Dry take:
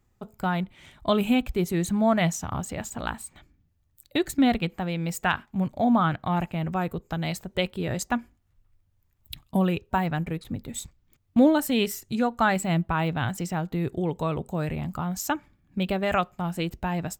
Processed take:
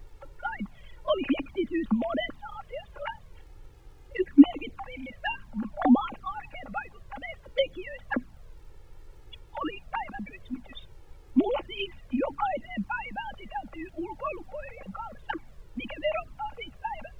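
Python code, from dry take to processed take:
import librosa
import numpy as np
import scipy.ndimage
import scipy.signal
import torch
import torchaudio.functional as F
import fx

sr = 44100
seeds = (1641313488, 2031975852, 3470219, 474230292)

y = fx.sine_speech(x, sr)
y = fx.low_shelf(y, sr, hz=290.0, db=-8.5)
y = y + 0.69 * np.pad(y, (int(3.6 * sr / 1000.0), 0))[:len(y)]
y = fx.dmg_noise_colour(y, sr, seeds[0], colour='brown', level_db=-44.0)
y = fx.dmg_crackle(y, sr, seeds[1], per_s=140.0, level_db=-52.0)
y = fx.env_flanger(y, sr, rest_ms=2.8, full_db=-20.0)
y = F.gain(torch.from_numpy(y), -1.5).numpy()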